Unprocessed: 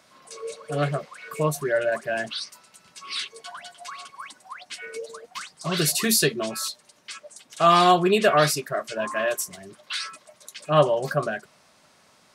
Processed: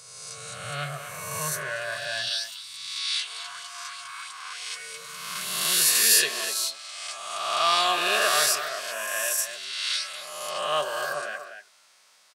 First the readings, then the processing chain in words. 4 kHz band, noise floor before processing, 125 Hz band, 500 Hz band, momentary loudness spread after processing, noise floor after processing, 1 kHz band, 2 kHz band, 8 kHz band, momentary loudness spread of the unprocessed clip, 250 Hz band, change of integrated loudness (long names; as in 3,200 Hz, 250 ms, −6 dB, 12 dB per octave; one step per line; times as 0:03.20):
+4.0 dB, −59 dBFS, −13.0 dB, −9.5 dB, 17 LU, −59 dBFS, −4.5 dB, +1.0 dB, +5.0 dB, 21 LU, −17.0 dB, −1.5 dB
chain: peak hold with a rise ahead of every peak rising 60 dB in 1.55 s
high-pass filter sweep 110 Hz → 310 Hz, 0:04.65–0:05.97
guitar amp tone stack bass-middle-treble 10-0-10
far-end echo of a speakerphone 240 ms, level −8 dB